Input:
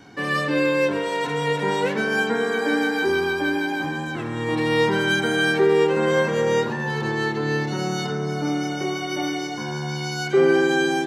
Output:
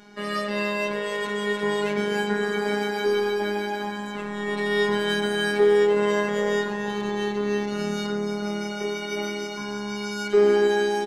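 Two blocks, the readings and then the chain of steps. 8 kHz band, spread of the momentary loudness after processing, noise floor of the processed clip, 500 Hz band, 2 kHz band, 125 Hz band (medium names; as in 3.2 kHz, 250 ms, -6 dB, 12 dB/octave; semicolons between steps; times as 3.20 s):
-3.5 dB, 11 LU, -32 dBFS, -1.0 dB, -5.0 dB, -8.0 dB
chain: Chebyshev shaper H 6 -35 dB, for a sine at -7 dBFS; delay 281 ms -12 dB; robot voice 206 Hz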